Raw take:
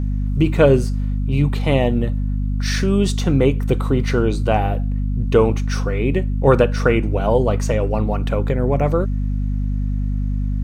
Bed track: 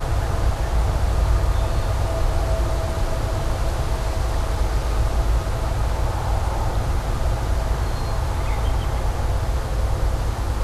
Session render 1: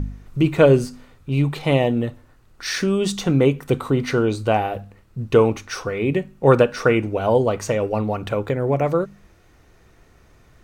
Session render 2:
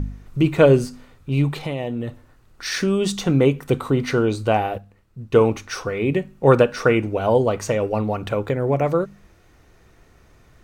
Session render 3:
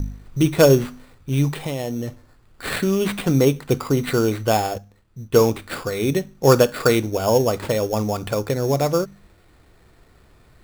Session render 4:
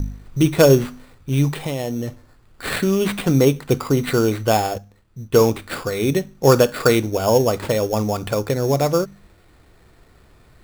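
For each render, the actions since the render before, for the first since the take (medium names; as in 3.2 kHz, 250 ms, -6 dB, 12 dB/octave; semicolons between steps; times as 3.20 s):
de-hum 50 Hz, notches 5
1.63–2.72 s: compression, threshold -22 dBFS; 4.78–5.41 s: upward expansion, over -24 dBFS
wow and flutter 21 cents; sample-rate reducer 6 kHz, jitter 0%
trim +1.5 dB; peak limiter -3 dBFS, peak gain reduction 1.5 dB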